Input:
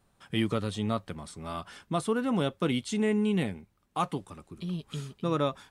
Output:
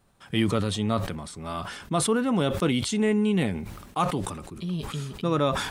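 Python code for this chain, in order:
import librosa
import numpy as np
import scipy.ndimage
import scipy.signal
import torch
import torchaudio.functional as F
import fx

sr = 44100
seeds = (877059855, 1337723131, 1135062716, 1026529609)

y = fx.sustainer(x, sr, db_per_s=52.0)
y = y * librosa.db_to_amplitude(3.5)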